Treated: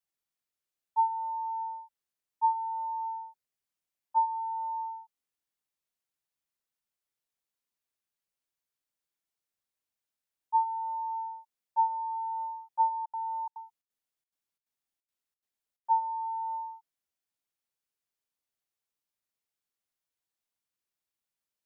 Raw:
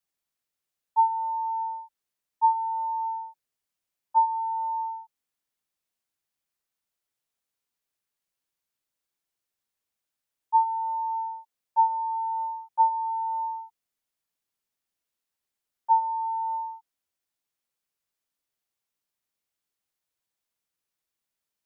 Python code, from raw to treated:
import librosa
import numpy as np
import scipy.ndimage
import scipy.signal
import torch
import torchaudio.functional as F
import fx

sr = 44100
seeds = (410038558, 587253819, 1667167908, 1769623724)

y = fx.step_gate(x, sr, bpm=177, pattern='x.xxxx.xx', floor_db=-60.0, edge_ms=4.5, at=(13.04, 15.99), fade=0.02)
y = y * 10.0 ** (-5.0 / 20.0)